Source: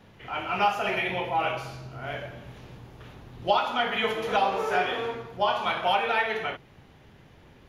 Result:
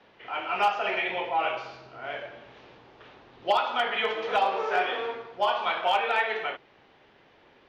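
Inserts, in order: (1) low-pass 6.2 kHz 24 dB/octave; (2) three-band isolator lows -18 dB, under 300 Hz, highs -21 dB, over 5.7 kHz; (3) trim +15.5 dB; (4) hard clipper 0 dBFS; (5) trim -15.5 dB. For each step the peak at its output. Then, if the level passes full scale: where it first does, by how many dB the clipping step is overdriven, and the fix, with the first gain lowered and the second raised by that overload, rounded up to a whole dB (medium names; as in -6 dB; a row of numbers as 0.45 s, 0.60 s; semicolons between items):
-10.5 dBFS, -11.0 dBFS, +4.5 dBFS, 0.0 dBFS, -15.5 dBFS; step 3, 4.5 dB; step 3 +10.5 dB, step 5 -10.5 dB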